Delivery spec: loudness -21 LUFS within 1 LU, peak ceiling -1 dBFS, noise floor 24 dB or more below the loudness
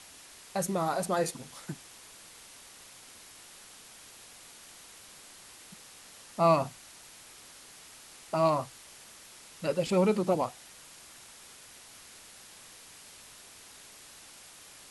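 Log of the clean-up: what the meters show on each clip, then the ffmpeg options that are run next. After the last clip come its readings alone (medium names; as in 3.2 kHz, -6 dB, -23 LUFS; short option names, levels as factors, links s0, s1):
noise floor -52 dBFS; noise floor target -54 dBFS; loudness -30.0 LUFS; peak level -12.0 dBFS; loudness target -21.0 LUFS
-> -af "afftdn=nr=6:nf=-52"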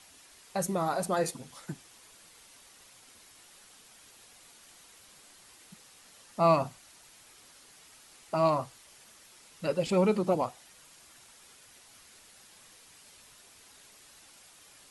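noise floor -57 dBFS; loudness -30.0 LUFS; peak level -12.0 dBFS; loudness target -21.0 LUFS
-> -af "volume=2.82"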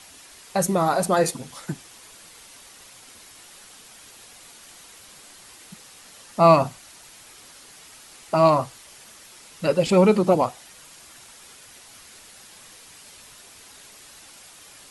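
loudness -20.5 LUFS; peak level -3.0 dBFS; noise floor -48 dBFS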